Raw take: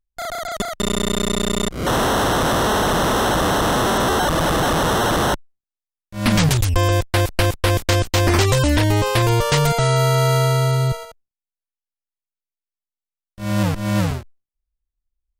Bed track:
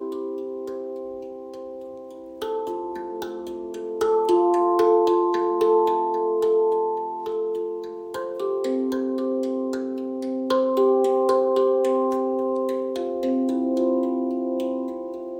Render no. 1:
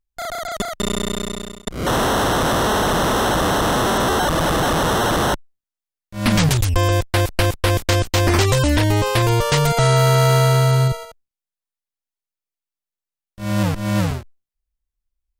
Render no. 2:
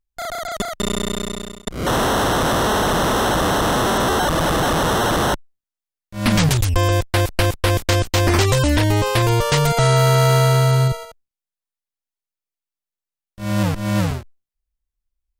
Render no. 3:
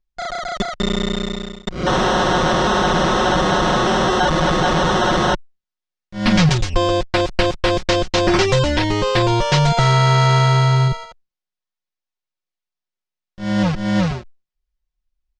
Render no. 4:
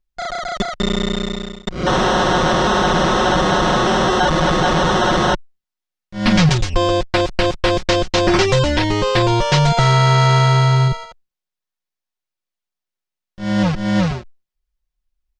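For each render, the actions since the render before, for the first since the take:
0.55–1.67 s: fade out equal-power; 9.77–10.88 s: waveshaping leveller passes 1
no audible change
low-pass 6 kHz 24 dB/octave; comb 5.5 ms, depth 70%
trim +1 dB; peak limiter -3 dBFS, peak gain reduction 2 dB

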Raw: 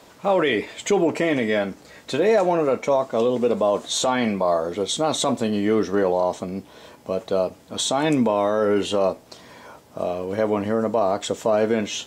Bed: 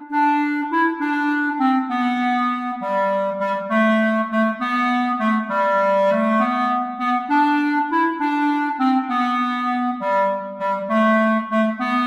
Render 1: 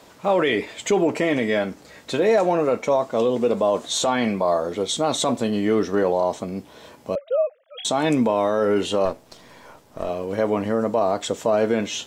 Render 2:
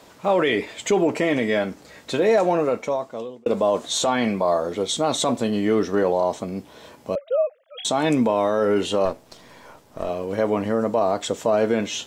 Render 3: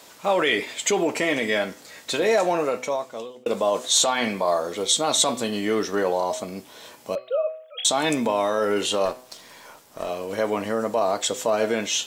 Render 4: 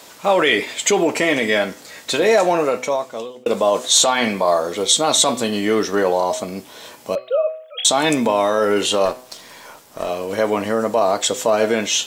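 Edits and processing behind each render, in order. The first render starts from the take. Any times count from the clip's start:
7.15–7.85 s: formants replaced by sine waves; 9.05–10.09 s: partial rectifier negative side -7 dB
2.57–3.46 s: fade out
tilt EQ +2.5 dB/octave; de-hum 126.6 Hz, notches 40
trim +5.5 dB; peak limiter -2 dBFS, peak gain reduction 1.5 dB

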